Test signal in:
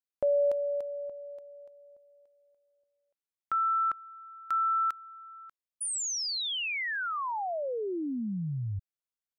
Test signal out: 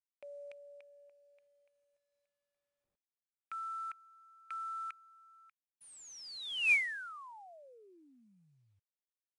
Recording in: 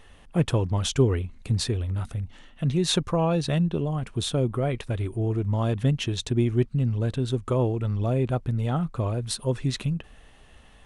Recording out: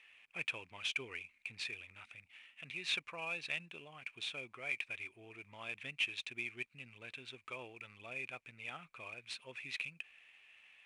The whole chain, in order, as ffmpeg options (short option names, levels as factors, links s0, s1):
-af "bandpass=f=2400:t=q:w=10:csg=0,volume=2.66" -ar 22050 -c:a adpcm_ima_wav